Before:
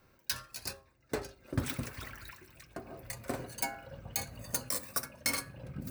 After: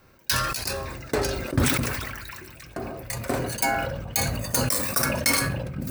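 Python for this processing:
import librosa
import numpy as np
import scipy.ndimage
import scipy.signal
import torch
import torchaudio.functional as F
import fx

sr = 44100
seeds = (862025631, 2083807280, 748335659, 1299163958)

y = fx.sustainer(x, sr, db_per_s=33.0)
y = y * 10.0 ** (8.5 / 20.0)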